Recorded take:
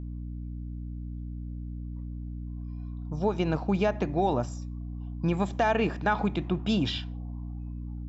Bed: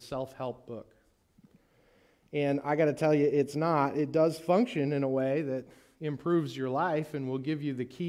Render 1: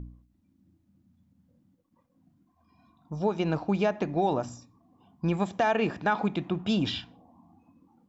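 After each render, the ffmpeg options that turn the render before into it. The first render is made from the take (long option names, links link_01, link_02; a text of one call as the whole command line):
ffmpeg -i in.wav -af "bandreject=frequency=60:width_type=h:width=4,bandreject=frequency=120:width_type=h:width=4,bandreject=frequency=180:width_type=h:width=4,bandreject=frequency=240:width_type=h:width=4,bandreject=frequency=300:width_type=h:width=4" out.wav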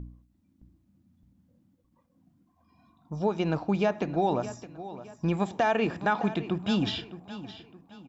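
ffmpeg -i in.wav -af "aecho=1:1:615|1230|1845:0.188|0.0697|0.0258" out.wav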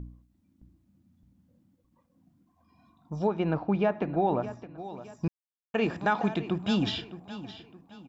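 ffmpeg -i in.wav -filter_complex "[0:a]asettb=1/sr,asplit=3[link_01][link_02][link_03];[link_01]atrim=end=3.274[link_04];[link_02]atrim=start=3.27:end=4.78,asetpts=PTS-STARTPTS,afade=type=in:duration=0.004:curve=qsin,afade=type=out:start_time=1.506:duration=0.004:curve=qsin,lowpass=2400[link_05];[link_03]atrim=start=4.776[link_06];[link_04][link_05]acrossfade=duration=0.004:curve1=hsin:curve2=qsin[link_07];[link_07][link_06]acrossfade=duration=0.004:curve1=qsin:curve2=hsin,asplit=3[link_08][link_09][link_10];[link_08]atrim=end=5.28,asetpts=PTS-STARTPTS,afade=type=out:start_time=5.276:duration=0.004:curve=hsin[link_11];[link_09]atrim=start=5.28:end=5.74,asetpts=PTS-STARTPTS,volume=0[link_12];[link_10]atrim=start=5.74,asetpts=PTS-STARTPTS,afade=type=in:duration=0.004:curve=hsin[link_13];[link_11][link_12][link_13]concat=n=3:v=0:a=1" out.wav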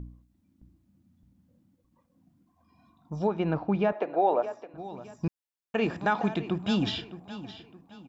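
ffmpeg -i in.wav -filter_complex "[0:a]asettb=1/sr,asplit=3[link_01][link_02][link_03];[link_01]atrim=end=3.924[link_04];[link_02]atrim=start=3.92:end=4.74,asetpts=PTS-STARTPTS,afade=type=in:duration=0.004:curve=qsin,afade=type=out:start_time=0.816:duration=0.004:curve=qsin,highpass=frequency=510:width_type=q:width=1.9[link_05];[link_03]atrim=start=4.736[link_06];[link_04][link_05]acrossfade=duration=0.004:curve1=hsin:curve2=qsin[link_07];[link_07][link_06]acrossfade=duration=0.004:curve1=qsin:curve2=hsin" out.wav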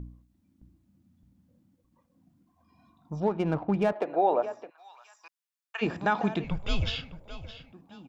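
ffmpeg -i in.wav -filter_complex "[0:a]asettb=1/sr,asplit=3[link_01][link_02][link_03];[link_01]atrim=end=3.204[link_04];[link_02]atrim=start=3.2:end=4.06,asetpts=PTS-STARTPTS,afade=type=in:duration=0.004:curve=qsin,afade=type=out:start_time=0.856:duration=0.004:curve=qsin,adynamicsmooth=sensitivity=6.5:basefreq=1900[link_05];[link_03]atrim=start=4.056[link_06];[link_04][link_05]acrossfade=duration=0.004:curve1=hsin:curve2=qsin[link_07];[link_07][link_06]acrossfade=duration=0.004:curve1=qsin:curve2=hsin,asplit=3[link_08][link_09][link_10];[link_08]afade=type=out:start_time=4.69:duration=0.02[link_11];[link_09]highpass=frequency=1000:width=0.5412,highpass=frequency=1000:width=1.3066,afade=type=in:start_time=4.69:duration=0.02,afade=type=out:start_time=5.81:duration=0.02[link_12];[link_10]afade=type=in:start_time=5.81:duration=0.02[link_13];[link_11][link_12][link_13]amix=inputs=3:normalize=0,asettb=1/sr,asplit=3[link_14][link_15][link_16];[link_14]atrim=end=6.444[link_17];[link_15]atrim=start=6.44:end=7.73,asetpts=PTS-STARTPTS,afade=type=in:duration=0.004:curve=qsin,afade=type=out:start_time=1.286:duration=0.004:curve=qsin,afreqshift=-190[link_18];[link_16]atrim=start=7.726[link_19];[link_17][link_18]acrossfade=duration=0.004:curve1=hsin:curve2=qsin[link_20];[link_20][link_19]acrossfade=duration=0.004:curve1=qsin:curve2=hsin" out.wav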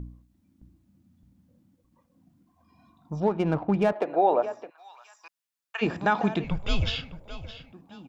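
ffmpeg -i in.wav -af "volume=2.5dB" out.wav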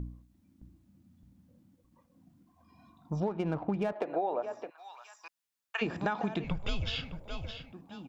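ffmpeg -i in.wav -af "acompressor=threshold=-28dB:ratio=10" out.wav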